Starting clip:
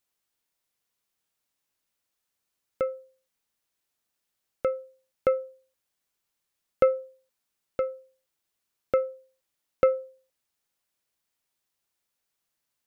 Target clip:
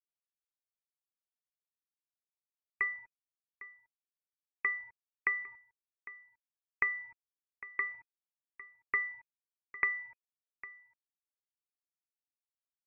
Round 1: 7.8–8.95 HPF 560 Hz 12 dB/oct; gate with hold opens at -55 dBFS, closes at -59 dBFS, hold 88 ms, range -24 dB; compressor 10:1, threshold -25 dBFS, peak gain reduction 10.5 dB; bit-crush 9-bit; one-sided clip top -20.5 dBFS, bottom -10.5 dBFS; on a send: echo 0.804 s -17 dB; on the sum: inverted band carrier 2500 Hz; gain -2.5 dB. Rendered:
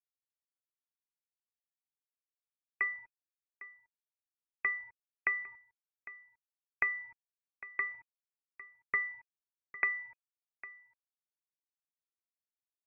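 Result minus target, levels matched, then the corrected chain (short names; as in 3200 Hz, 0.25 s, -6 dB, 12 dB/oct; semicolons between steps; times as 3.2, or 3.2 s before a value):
one-sided clip: distortion +13 dB
7.8–8.95 HPF 560 Hz 12 dB/oct; gate with hold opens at -55 dBFS, closes at -59 dBFS, hold 88 ms, range -24 dB; compressor 10:1, threshold -25 dBFS, peak gain reduction 10.5 dB; bit-crush 9-bit; one-sided clip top -12 dBFS, bottom -10.5 dBFS; on a send: echo 0.804 s -17 dB; on the sum: inverted band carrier 2500 Hz; gain -2.5 dB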